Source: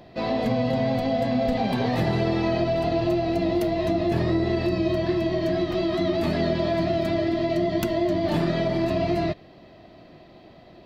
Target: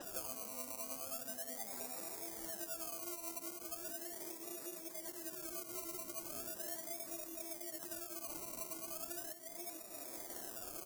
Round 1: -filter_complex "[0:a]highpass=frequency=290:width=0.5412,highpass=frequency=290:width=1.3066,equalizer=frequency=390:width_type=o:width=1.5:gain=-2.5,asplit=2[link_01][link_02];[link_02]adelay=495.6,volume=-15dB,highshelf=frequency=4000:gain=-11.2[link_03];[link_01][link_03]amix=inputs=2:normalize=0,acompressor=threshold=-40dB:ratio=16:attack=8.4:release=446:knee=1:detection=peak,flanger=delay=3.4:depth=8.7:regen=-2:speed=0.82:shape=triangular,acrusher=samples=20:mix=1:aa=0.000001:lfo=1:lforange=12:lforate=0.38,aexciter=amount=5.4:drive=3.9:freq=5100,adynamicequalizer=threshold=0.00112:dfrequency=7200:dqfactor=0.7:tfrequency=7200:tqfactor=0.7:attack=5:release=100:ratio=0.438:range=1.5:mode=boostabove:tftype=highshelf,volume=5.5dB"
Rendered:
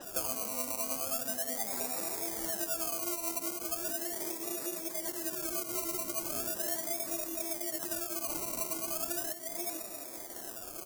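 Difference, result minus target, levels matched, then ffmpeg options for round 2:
downward compressor: peak gain reduction −10 dB
-filter_complex "[0:a]highpass=frequency=290:width=0.5412,highpass=frequency=290:width=1.3066,equalizer=frequency=390:width_type=o:width=1.5:gain=-2.5,asplit=2[link_01][link_02];[link_02]adelay=495.6,volume=-15dB,highshelf=frequency=4000:gain=-11.2[link_03];[link_01][link_03]amix=inputs=2:normalize=0,acompressor=threshold=-50.5dB:ratio=16:attack=8.4:release=446:knee=1:detection=peak,flanger=delay=3.4:depth=8.7:regen=-2:speed=0.82:shape=triangular,acrusher=samples=20:mix=1:aa=0.000001:lfo=1:lforange=12:lforate=0.38,aexciter=amount=5.4:drive=3.9:freq=5100,adynamicequalizer=threshold=0.00112:dfrequency=7200:dqfactor=0.7:tfrequency=7200:tqfactor=0.7:attack=5:release=100:ratio=0.438:range=1.5:mode=boostabove:tftype=highshelf,volume=5.5dB"

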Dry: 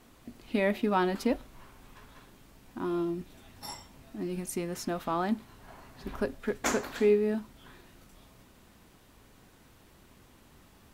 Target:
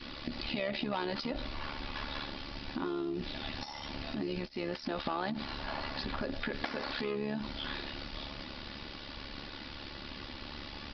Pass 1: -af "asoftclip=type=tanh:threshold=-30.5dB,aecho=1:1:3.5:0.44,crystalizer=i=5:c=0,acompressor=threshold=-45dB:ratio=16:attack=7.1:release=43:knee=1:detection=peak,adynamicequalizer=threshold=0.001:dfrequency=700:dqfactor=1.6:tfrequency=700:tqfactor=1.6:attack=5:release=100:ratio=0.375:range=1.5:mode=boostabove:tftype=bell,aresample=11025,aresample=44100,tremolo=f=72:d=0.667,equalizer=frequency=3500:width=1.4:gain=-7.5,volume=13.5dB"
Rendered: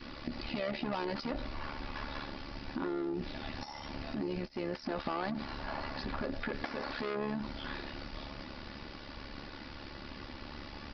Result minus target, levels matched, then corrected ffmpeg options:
soft clipping: distortion +10 dB; 4,000 Hz band −4.5 dB
-af "asoftclip=type=tanh:threshold=-20.5dB,aecho=1:1:3.5:0.44,crystalizer=i=5:c=0,acompressor=threshold=-45dB:ratio=16:attack=7.1:release=43:knee=1:detection=peak,adynamicequalizer=threshold=0.001:dfrequency=700:dqfactor=1.6:tfrequency=700:tqfactor=1.6:attack=5:release=100:ratio=0.375:range=1.5:mode=boostabove:tftype=bell,aresample=11025,aresample=44100,tremolo=f=72:d=0.667,volume=13.5dB"

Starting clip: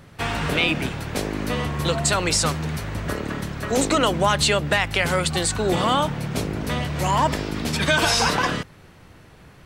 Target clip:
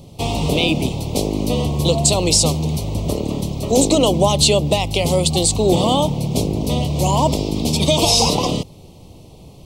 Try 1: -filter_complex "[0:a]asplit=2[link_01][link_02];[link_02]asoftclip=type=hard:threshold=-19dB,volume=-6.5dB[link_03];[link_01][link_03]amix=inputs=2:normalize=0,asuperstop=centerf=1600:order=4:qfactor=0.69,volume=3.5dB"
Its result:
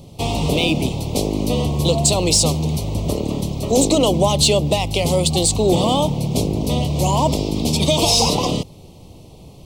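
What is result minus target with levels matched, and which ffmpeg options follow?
hard clipping: distortion +22 dB
-filter_complex "[0:a]asplit=2[link_01][link_02];[link_02]asoftclip=type=hard:threshold=-9.5dB,volume=-6.5dB[link_03];[link_01][link_03]amix=inputs=2:normalize=0,asuperstop=centerf=1600:order=4:qfactor=0.69,volume=3.5dB"

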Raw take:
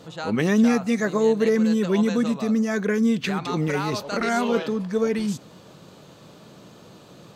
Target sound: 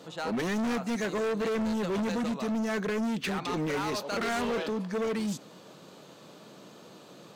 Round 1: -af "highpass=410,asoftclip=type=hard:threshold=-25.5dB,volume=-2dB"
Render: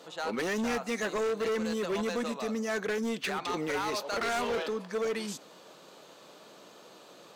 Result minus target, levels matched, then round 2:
250 Hz band −3.5 dB
-af "highpass=200,asoftclip=type=hard:threshold=-25.5dB,volume=-2dB"

